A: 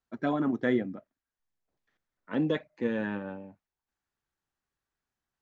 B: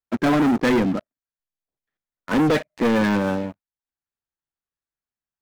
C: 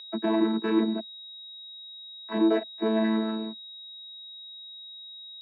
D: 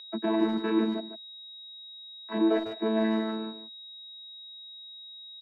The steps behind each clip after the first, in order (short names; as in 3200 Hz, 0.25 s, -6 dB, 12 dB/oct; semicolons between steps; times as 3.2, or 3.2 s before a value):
sample leveller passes 5
chord vocoder bare fifth, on A3; whine 3800 Hz -30 dBFS; three-band isolator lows -13 dB, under 240 Hz, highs -16 dB, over 2800 Hz; gain -2 dB
speakerphone echo 0.15 s, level -8 dB; gain -2 dB